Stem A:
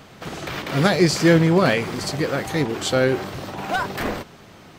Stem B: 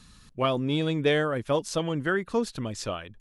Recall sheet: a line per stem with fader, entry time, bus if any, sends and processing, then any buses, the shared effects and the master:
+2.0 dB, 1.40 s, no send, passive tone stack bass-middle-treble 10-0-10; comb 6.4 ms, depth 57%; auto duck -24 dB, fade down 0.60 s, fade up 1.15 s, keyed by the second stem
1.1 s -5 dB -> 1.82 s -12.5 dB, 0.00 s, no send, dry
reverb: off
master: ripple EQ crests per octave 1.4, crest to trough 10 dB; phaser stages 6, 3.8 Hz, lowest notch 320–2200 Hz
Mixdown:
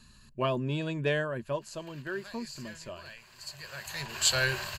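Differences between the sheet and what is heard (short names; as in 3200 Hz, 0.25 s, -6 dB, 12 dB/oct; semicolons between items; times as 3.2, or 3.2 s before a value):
stem A: missing comb 6.4 ms, depth 57%; master: missing phaser stages 6, 3.8 Hz, lowest notch 320–2200 Hz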